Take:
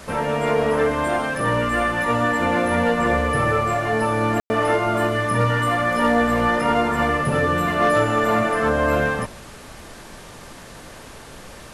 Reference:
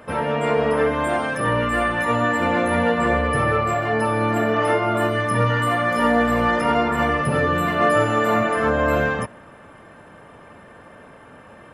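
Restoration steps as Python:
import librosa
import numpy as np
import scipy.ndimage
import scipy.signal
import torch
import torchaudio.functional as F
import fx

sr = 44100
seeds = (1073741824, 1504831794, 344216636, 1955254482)

y = fx.fix_declip(x, sr, threshold_db=-10.0)
y = fx.fix_ambience(y, sr, seeds[0], print_start_s=10.8, print_end_s=11.3, start_s=4.4, end_s=4.5)
y = fx.noise_reduce(y, sr, print_start_s=10.8, print_end_s=11.3, reduce_db=6.0)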